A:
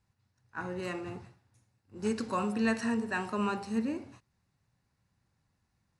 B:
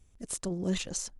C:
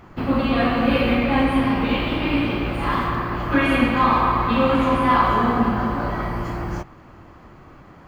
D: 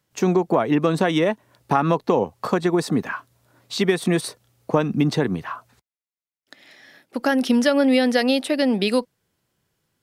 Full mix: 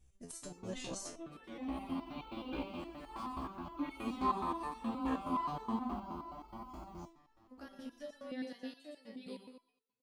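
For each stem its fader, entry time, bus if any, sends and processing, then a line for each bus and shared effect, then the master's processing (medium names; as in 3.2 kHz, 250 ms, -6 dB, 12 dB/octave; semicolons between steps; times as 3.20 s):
-10.0 dB, 1.95 s, no send, no echo send, none
+2.5 dB, 0.00 s, no send, no echo send, none
-7.5 dB, 0.25 s, no send, no echo send, static phaser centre 470 Hz, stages 6; auto duck -22 dB, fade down 1.20 s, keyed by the second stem
-15.5 dB, 0.35 s, no send, echo send -3 dB, feedback comb 66 Hz, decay 0.3 s, harmonics all, mix 80%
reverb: none
echo: feedback delay 114 ms, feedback 40%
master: resonator arpeggio 9.5 Hz 65–440 Hz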